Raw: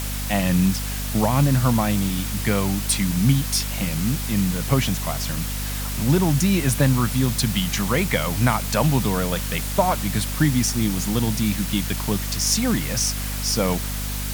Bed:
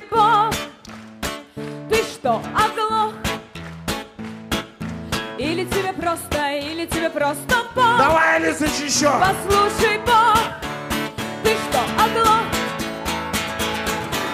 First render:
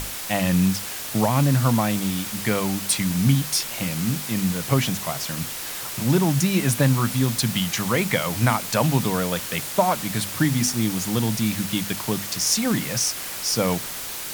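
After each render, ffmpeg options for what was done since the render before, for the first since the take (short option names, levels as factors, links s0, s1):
-af "bandreject=f=50:t=h:w=6,bandreject=f=100:t=h:w=6,bandreject=f=150:t=h:w=6,bandreject=f=200:t=h:w=6,bandreject=f=250:t=h:w=6"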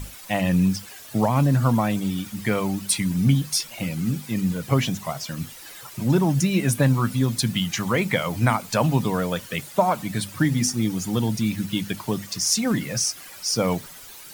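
-af "afftdn=nr=13:nf=-32"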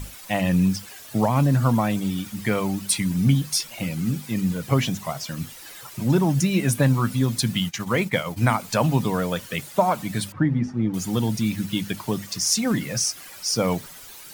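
-filter_complex "[0:a]asplit=3[s0][s1][s2];[s0]afade=t=out:st=7.68:d=0.02[s3];[s1]agate=range=0.0224:threshold=0.0708:ratio=3:release=100:detection=peak,afade=t=in:st=7.68:d=0.02,afade=t=out:st=8.36:d=0.02[s4];[s2]afade=t=in:st=8.36:d=0.02[s5];[s3][s4][s5]amix=inputs=3:normalize=0,asettb=1/sr,asplit=3[s6][s7][s8];[s6]atrim=end=10.324[s9];[s7]atrim=start=10.32:end=10.94,asetpts=PTS-STARTPTS,afade=t=in:d=0.004:c=qsin,afade=t=out:st=0.616:d=0.004:c=qsin,lowpass=1400[s10];[s8]atrim=start=10.936[s11];[s9][s10]acrossfade=d=0.004:c1=hsin:c2=qsin[s12];[s12][s11]acrossfade=d=0.004:c1=qsin:c2=hsin"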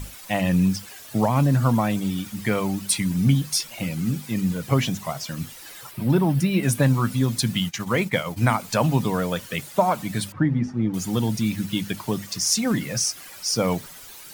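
-filter_complex "[0:a]asettb=1/sr,asplit=3[s0][s1][s2];[s0]atrim=end=5.914[s3];[s1]atrim=start=5.91:end=6.63,asetpts=PTS-STARTPTS,afade=t=in:d=0.004:c=qsin,afade=t=out:st=0.716:d=0.004:c=qsin,equalizer=f=6600:w=2:g=-12.5[s4];[s2]atrim=start=6.626[s5];[s3][s4]acrossfade=d=0.004:c1=hsin:c2=qsin[s6];[s6][s5]acrossfade=d=0.004:c1=qsin:c2=hsin"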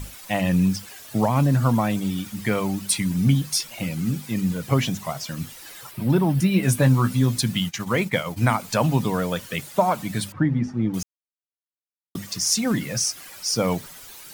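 -filter_complex "[0:a]asettb=1/sr,asplit=3[s0][s1][s2];[s0]atrim=end=6.384[s3];[s1]atrim=start=6.38:end=7.41,asetpts=PTS-STARTPTS,afade=t=in:d=0.004:c=qsin,afade=t=out:st=1.026:d=0.004:c=qsin,asplit=2[s4][s5];[s5]adelay=16,volume=0.398[s6];[s4][s6]amix=inputs=2:normalize=0,atrim=end_sample=45423[s7];[s2]atrim=start=7.406[s8];[s3][s7]acrossfade=d=0.004:c1=hsin:c2=qsin[s9];[s9][s8]acrossfade=d=0.004:c1=qsin:c2=hsin,asplit=3[s10][s11][s12];[s10]atrim=end=11.03,asetpts=PTS-STARTPTS,afade=t=out:st=11.026:d=0.004:c=hsin[s13];[s11]atrim=start=11.03:end=12.15,asetpts=PTS-STARTPTS,volume=0[s14];[s12]atrim=start=12.15,asetpts=PTS-STARTPTS,afade=t=in:d=0.004:c=hsin[s15];[s13][s14][s15]concat=n=3:v=0:a=1"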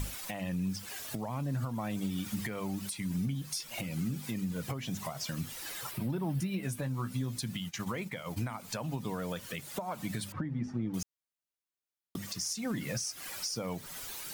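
-af "acompressor=threshold=0.0355:ratio=10,alimiter=level_in=1.12:limit=0.0631:level=0:latency=1:release=258,volume=0.891"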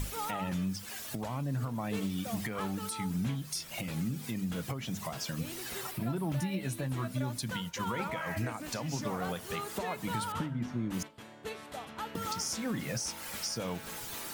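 -filter_complex "[1:a]volume=0.0668[s0];[0:a][s0]amix=inputs=2:normalize=0"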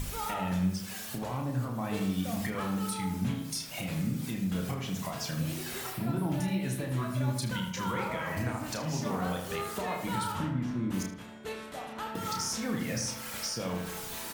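-filter_complex "[0:a]asplit=2[s0][s1];[s1]adelay=32,volume=0.531[s2];[s0][s2]amix=inputs=2:normalize=0,asplit=2[s3][s4];[s4]adelay=77,lowpass=f=2500:p=1,volume=0.531,asplit=2[s5][s6];[s6]adelay=77,lowpass=f=2500:p=1,volume=0.51,asplit=2[s7][s8];[s8]adelay=77,lowpass=f=2500:p=1,volume=0.51,asplit=2[s9][s10];[s10]adelay=77,lowpass=f=2500:p=1,volume=0.51,asplit=2[s11][s12];[s12]adelay=77,lowpass=f=2500:p=1,volume=0.51,asplit=2[s13][s14];[s14]adelay=77,lowpass=f=2500:p=1,volume=0.51[s15];[s3][s5][s7][s9][s11][s13][s15]amix=inputs=7:normalize=0"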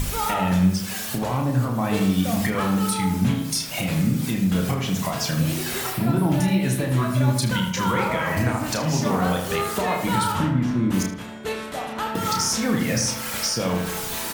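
-af "volume=3.35"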